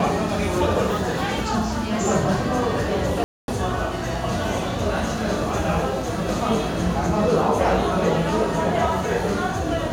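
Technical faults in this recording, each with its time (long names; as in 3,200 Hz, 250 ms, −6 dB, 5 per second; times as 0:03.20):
0:03.24–0:03.48: drop-out 241 ms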